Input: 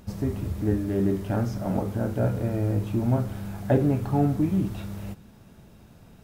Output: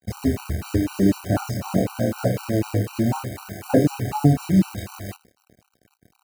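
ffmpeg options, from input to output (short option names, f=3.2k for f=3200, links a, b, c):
-filter_complex "[0:a]asettb=1/sr,asplit=3[a][b][c];[a]atrim=end=1.844[d];[b]atrim=start=1.84:end=4.01,asetpts=PTS-STARTPTS,afade=t=in:d=0.004:c=qsin,afade=t=out:st=2.166:d=0.004:c=qsin,lowshelf=f=110:g=-7[e];[c]atrim=start=4.006[f];[d][e]acrossfade=d=0.004:c1=hsin:c2=qsin[g];[g][f]acrossfade=d=0.004:c1=qsin:c2=hsin,acrusher=bits=7:dc=4:mix=0:aa=0.000001,asplit=2[h][i];[i]adelay=27,volume=-2dB[j];[h][j]amix=inputs=2:normalize=0,aecho=1:1:97:0.0841,aeval=exprs='sgn(val(0))*max(abs(val(0))-0.00531,0)':c=same,highpass=74,bandreject=f=3.4k:w=6.6,afftfilt=real='re*gt(sin(2*PI*4*pts/sr)*(1-2*mod(floor(b*sr/1024/770),2)),0)':imag='im*gt(sin(2*PI*4*pts/sr)*(1-2*mod(floor(b*sr/1024/770),2)),0)':win_size=1024:overlap=0.75,volume=6dB"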